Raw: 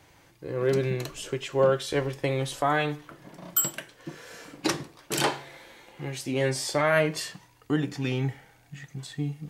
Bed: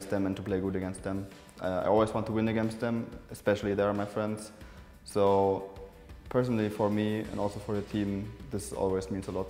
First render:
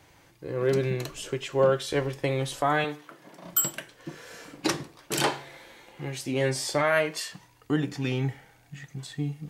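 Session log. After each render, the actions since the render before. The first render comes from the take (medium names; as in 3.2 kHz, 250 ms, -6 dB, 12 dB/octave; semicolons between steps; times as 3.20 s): 2.84–3.45 s: Bessel high-pass 280 Hz; 6.82–7.31 s: high-pass 230 Hz -> 930 Hz 6 dB/octave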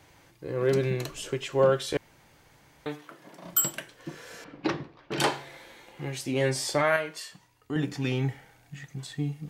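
1.97–2.86 s: room tone; 4.44–5.20 s: distance through air 270 m; 6.96–7.76 s: feedback comb 84 Hz, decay 0.33 s, harmonics odd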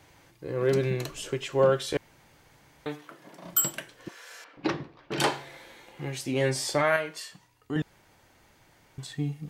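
4.08–4.57 s: high-pass 800 Hz; 7.82–8.98 s: room tone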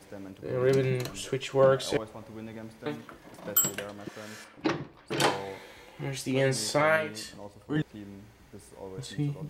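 add bed -13 dB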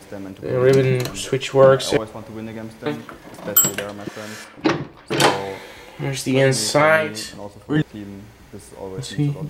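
trim +10 dB; peak limiter -2 dBFS, peak gain reduction 1 dB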